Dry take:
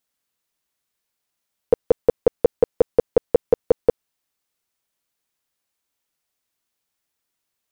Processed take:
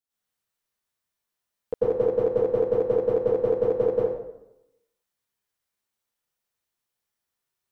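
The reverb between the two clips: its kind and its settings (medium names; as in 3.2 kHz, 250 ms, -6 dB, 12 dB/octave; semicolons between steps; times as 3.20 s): plate-style reverb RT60 0.88 s, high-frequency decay 0.65×, pre-delay 85 ms, DRR -10 dB; trim -14 dB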